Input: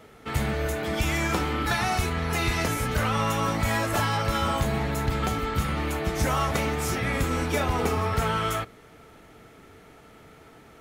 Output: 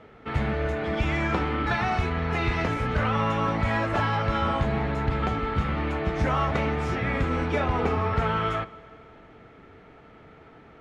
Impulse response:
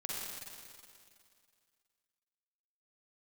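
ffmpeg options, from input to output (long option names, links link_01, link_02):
-filter_complex "[0:a]lowpass=2700,asplit=2[link_01][link_02];[1:a]atrim=start_sample=2205,lowpass=8000[link_03];[link_02][link_03]afir=irnorm=-1:irlink=0,volume=-18.5dB[link_04];[link_01][link_04]amix=inputs=2:normalize=0"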